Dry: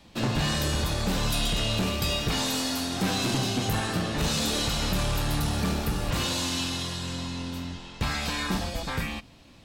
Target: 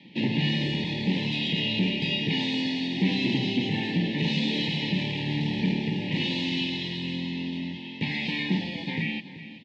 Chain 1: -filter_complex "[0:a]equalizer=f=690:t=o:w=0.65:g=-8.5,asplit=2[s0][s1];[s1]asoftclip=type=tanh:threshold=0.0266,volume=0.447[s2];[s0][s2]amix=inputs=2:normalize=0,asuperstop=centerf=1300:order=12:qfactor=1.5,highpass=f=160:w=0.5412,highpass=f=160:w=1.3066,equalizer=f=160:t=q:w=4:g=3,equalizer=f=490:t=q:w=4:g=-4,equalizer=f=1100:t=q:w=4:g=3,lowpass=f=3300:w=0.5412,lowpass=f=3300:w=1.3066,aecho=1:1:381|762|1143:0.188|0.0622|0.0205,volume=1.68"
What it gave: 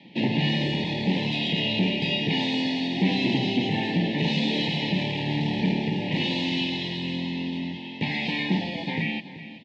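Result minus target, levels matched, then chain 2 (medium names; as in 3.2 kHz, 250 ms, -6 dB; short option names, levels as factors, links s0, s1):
saturation: distortion -4 dB; 500 Hz band +2.5 dB
-filter_complex "[0:a]equalizer=f=690:t=o:w=0.65:g=-19,asplit=2[s0][s1];[s1]asoftclip=type=tanh:threshold=0.00944,volume=0.447[s2];[s0][s2]amix=inputs=2:normalize=0,asuperstop=centerf=1300:order=12:qfactor=1.5,highpass=f=160:w=0.5412,highpass=f=160:w=1.3066,equalizer=f=160:t=q:w=4:g=3,equalizer=f=490:t=q:w=4:g=-4,equalizer=f=1100:t=q:w=4:g=3,lowpass=f=3300:w=0.5412,lowpass=f=3300:w=1.3066,aecho=1:1:381|762|1143:0.188|0.0622|0.0205,volume=1.68"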